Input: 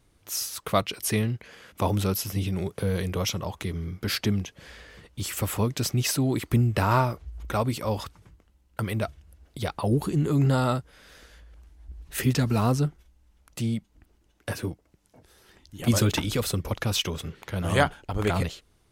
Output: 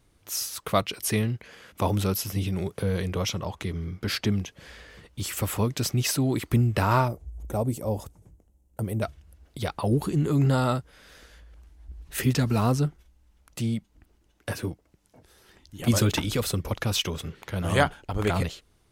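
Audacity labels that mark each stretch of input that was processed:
2.820000	4.320000	high-shelf EQ 11,000 Hz −9.5 dB
7.080000	9.020000	flat-topped bell 2,300 Hz −14 dB 2.6 octaves

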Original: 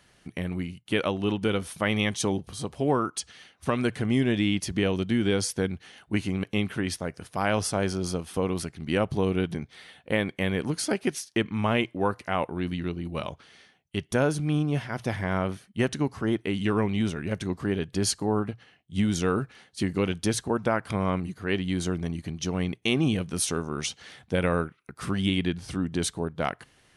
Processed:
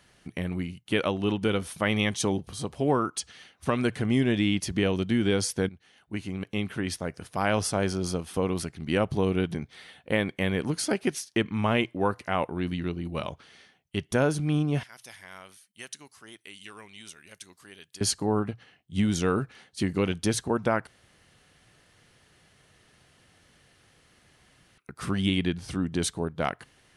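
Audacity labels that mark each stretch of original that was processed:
5.690000	7.140000	fade in, from −14.5 dB
14.830000	18.010000	first-order pre-emphasis coefficient 0.97
20.870000	24.780000	fill with room tone

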